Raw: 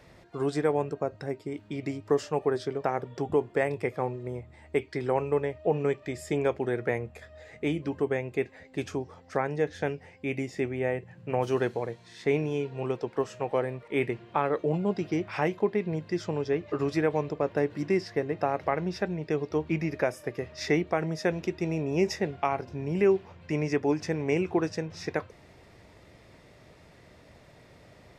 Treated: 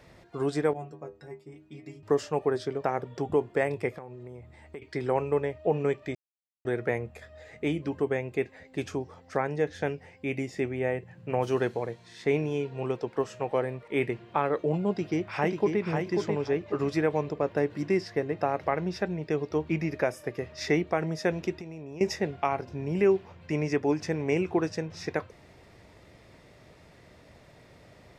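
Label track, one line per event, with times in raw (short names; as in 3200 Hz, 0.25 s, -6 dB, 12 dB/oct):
0.730000	2.030000	metallic resonator 73 Hz, decay 0.39 s, inharmonicity 0.008
3.980000	4.820000	compressor 5:1, threshold -39 dBFS
6.150000	6.650000	mute
14.890000	15.820000	echo throw 0.54 s, feedback 25%, level -4.5 dB
21.540000	22.010000	compressor 16:1, threshold -36 dBFS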